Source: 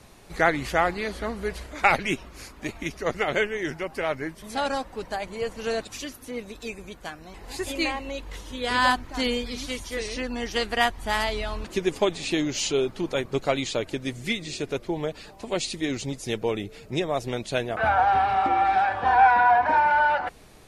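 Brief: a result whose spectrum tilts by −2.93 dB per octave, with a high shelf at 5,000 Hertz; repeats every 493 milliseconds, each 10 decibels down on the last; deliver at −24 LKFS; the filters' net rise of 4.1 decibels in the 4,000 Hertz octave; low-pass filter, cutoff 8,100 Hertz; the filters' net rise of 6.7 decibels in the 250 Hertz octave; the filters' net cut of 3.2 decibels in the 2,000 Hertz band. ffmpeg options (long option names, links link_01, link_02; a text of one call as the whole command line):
ffmpeg -i in.wav -af "lowpass=8100,equalizer=frequency=250:width_type=o:gain=8.5,equalizer=frequency=2000:width_type=o:gain=-6,equalizer=frequency=4000:width_type=o:gain=9,highshelf=frequency=5000:gain=-4,aecho=1:1:493|986|1479|1972:0.316|0.101|0.0324|0.0104" out.wav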